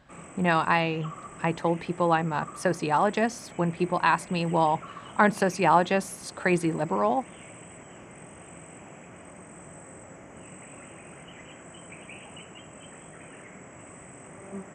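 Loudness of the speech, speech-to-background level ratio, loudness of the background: -26.0 LUFS, 19.0 dB, -45.0 LUFS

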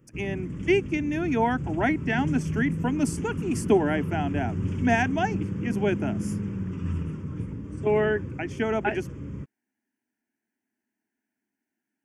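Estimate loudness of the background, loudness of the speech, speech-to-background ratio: -32.5 LUFS, -27.0 LUFS, 5.5 dB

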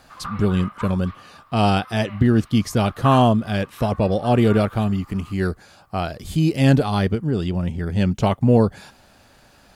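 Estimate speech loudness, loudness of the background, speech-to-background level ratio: -20.5 LUFS, -37.5 LUFS, 17.0 dB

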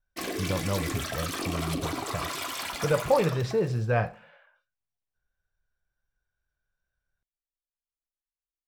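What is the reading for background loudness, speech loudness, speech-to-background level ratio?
-33.5 LUFS, -29.5 LUFS, 4.0 dB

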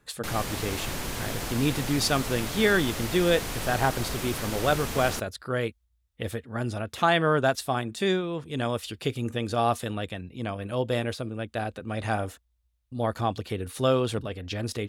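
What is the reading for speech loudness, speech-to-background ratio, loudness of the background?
-28.0 LUFS, 5.0 dB, -33.0 LUFS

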